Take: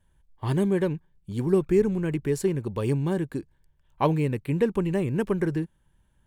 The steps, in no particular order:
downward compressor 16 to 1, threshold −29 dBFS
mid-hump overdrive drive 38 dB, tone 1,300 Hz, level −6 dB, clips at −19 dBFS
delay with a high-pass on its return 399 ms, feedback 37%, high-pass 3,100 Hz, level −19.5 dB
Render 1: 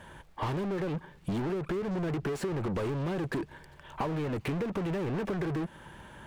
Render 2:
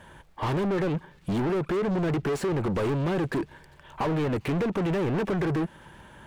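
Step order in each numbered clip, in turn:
mid-hump overdrive, then downward compressor, then delay with a high-pass on its return
downward compressor, then mid-hump overdrive, then delay with a high-pass on its return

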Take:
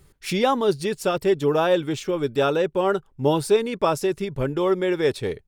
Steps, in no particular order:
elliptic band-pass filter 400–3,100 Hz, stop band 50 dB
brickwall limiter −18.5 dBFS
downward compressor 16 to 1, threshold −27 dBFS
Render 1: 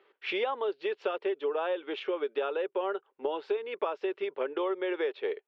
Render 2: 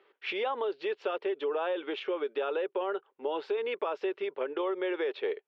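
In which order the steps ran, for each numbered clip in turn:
elliptic band-pass filter, then downward compressor, then brickwall limiter
brickwall limiter, then elliptic band-pass filter, then downward compressor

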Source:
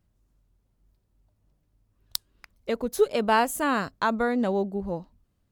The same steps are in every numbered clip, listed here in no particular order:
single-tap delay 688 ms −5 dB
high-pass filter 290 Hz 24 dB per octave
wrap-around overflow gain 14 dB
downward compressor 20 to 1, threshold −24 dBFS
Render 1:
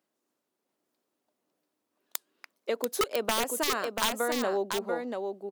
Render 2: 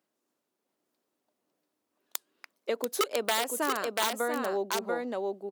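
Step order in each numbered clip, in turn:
high-pass filter, then wrap-around overflow, then downward compressor, then single-tap delay
wrap-around overflow, then single-tap delay, then downward compressor, then high-pass filter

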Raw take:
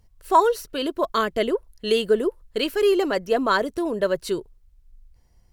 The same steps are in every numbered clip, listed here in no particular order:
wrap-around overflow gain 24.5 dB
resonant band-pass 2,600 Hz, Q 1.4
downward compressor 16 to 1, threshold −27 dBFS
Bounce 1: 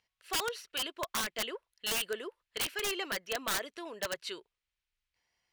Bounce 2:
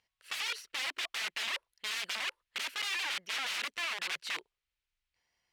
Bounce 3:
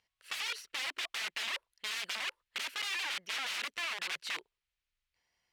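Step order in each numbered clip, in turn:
resonant band-pass, then wrap-around overflow, then downward compressor
wrap-around overflow, then resonant band-pass, then downward compressor
wrap-around overflow, then downward compressor, then resonant band-pass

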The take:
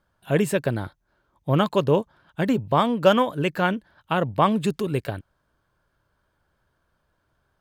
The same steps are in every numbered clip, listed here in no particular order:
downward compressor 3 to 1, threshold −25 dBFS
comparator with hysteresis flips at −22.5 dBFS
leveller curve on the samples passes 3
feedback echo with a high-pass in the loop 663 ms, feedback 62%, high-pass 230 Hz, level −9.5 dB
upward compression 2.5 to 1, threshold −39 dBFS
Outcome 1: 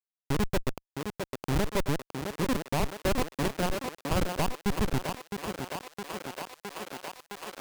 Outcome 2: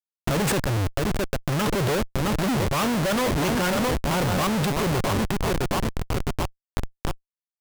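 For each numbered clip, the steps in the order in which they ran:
downward compressor, then comparator with hysteresis, then feedback echo with a high-pass in the loop, then upward compression, then leveller curve on the samples
upward compression, then feedback echo with a high-pass in the loop, then leveller curve on the samples, then comparator with hysteresis, then downward compressor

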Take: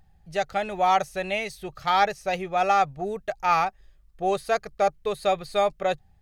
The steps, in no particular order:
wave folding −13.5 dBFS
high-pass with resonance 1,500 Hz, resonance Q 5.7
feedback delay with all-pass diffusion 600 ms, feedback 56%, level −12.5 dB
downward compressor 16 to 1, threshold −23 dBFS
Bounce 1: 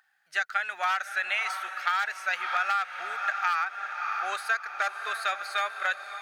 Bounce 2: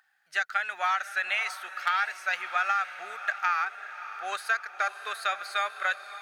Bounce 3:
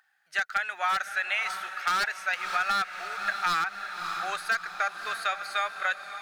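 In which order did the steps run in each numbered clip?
feedback delay with all-pass diffusion, then wave folding, then high-pass with resonance, then downward compressor
high-pass with resonance, then downward compressor, then wave folding, then feedback delay with all-pass diffusion
high-pass with resonance, then wave folding, then feedback delay with all-pass diffusion, then downward compressor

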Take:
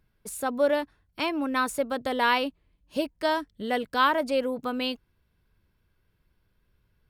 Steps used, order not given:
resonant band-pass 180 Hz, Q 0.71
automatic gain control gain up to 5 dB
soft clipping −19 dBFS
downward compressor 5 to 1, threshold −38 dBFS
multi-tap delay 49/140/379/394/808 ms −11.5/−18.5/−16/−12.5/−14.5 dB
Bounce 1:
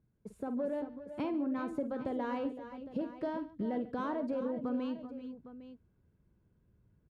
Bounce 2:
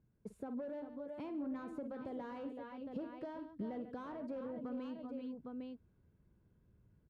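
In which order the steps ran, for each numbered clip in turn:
soft clipping, then resonant band-pass, then downward compressor, then multi-tap delay, then automatic gain control
automatic gain control, then multi-tap delay, then soft clipping, then downward compressor, then resonant band-pass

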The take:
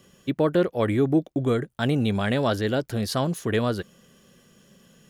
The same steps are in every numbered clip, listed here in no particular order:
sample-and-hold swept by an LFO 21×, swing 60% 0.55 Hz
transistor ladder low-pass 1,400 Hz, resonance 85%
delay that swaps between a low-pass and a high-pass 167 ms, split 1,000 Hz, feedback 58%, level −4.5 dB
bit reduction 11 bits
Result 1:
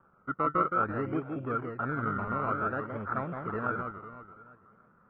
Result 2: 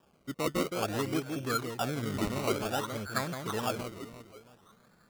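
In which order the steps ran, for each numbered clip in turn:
bit reduction, then delay that swaps between a low-pass and a high-pass, then sample-and-hold swept by an LFO, then transistor ladder low-pass
transistor ladder low-pass, then bit reduction, then delay that swaps between a low-pass and a high-pass, then sample-and-hold swept by an LFO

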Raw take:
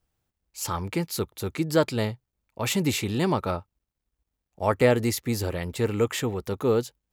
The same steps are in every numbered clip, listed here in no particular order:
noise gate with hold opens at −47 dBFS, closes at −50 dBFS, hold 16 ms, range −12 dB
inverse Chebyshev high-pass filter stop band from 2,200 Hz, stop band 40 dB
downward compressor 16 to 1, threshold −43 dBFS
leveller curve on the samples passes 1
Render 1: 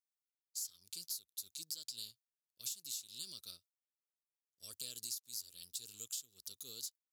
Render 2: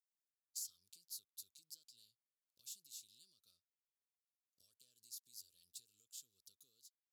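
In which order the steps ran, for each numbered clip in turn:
noise gate with hold, then inverse Chebyshev high-pass filter, then downward compressor, then leveller curve on the samples
leveller curve on the samples, then downward compressor, then noise gate with hold, then inverse Chebyshev high-pass filter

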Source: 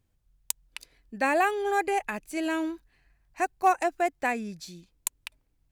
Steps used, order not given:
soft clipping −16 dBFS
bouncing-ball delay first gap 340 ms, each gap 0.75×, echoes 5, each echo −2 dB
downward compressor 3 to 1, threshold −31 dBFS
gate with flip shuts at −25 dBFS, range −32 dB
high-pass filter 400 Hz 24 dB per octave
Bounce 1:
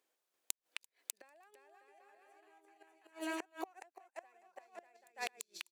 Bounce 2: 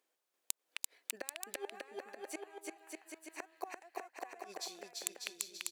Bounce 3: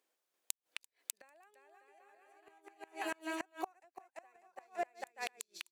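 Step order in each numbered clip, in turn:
soft clipping, then bouncing-ball delay, then downward compressor, then gate with flip, then high-pass filter
gate with flip, then high-pass filter, then soft clipping, then bouncing-ball delay, then downward compressor
bouncing-ball delay, then downward compressor, then high-pass filter, then gate with flip, then soft clipping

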